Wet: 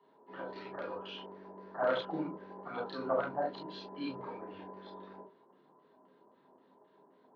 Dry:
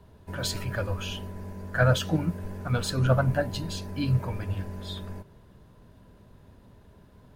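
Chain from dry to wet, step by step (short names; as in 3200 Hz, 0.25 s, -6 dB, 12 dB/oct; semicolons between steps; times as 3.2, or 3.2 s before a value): wavefolder -13.5 dBFS; LFO low-pass square 3.8 Hz 870–4400 Hz; ladder high-pass 320 Hz, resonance 40%; tape spacing loss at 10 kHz 33 dB; reverb, pre-delay 3 ms, DRR -1.5 dB; gain -8 dB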